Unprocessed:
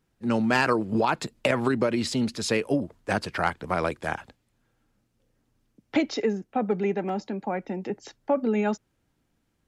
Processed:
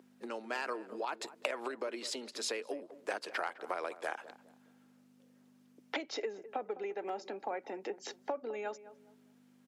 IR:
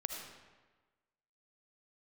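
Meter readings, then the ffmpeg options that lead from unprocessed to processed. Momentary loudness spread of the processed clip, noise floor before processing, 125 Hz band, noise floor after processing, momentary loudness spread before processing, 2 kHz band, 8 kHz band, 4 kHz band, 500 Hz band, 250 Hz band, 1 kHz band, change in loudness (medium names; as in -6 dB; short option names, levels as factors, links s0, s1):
6 LU, -74 dBFS, under -30 dB, -65 dBFS, 9 LU, -11.0 dB, -7.0 dB, -8.0 dB, -11.5 dB, -21.0 dB, -11.0 dB, -13.0 dB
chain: -filter_complex "[0:a]aeval=exprs='val(0)+0.01*(sin(2*PI*50*n/s)+sin(2*PI*2*50*n/s)/2+sin(2*PI*3*50*n/s)/3+sin(2*PI*4*50*n/s)/4+sin(2*PI*5*50*n/s)/5)':c=same,acompressor=threshold=0.0141:ratio=12,highpass=f=360:w=0.5412,highpass=f=360:w=1.3066,asplit=2[s0][s1];[s1]adelay=207,lowpass=f=990:p=1,volume=0.211,asplit=2[s2][s3];[s3]adelay=207,lowpass=f=990:p=1,volume=0.34,asplit=2[s4][s5];[s5]adelay=207,lowpass=f=990:p=1,volume=0.34[s6];[s2][s4][s6]amix=inputs=3:normalize=0[s7];[s0][s7]amix=inputs=2:normalize=0,volume=1.68"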